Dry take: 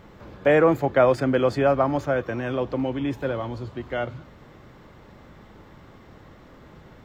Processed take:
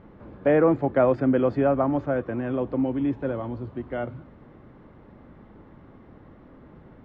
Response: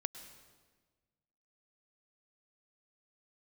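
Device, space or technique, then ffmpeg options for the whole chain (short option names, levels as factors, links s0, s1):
phone in a pocket: -af "lowpass=3300,equalizer=f=260:t=o:w=0.78:g=5,highshelf=f=2200:g=-11.5,volume=0.794"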